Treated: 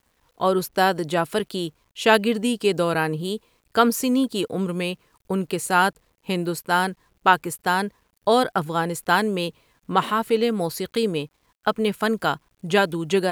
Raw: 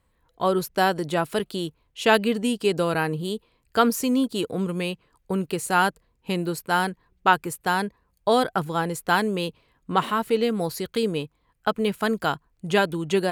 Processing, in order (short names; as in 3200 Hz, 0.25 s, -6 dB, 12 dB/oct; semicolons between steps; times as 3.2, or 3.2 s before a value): low shelf 120 Hz -3.5 dB; bit-crush 11-bit; gain +2 dB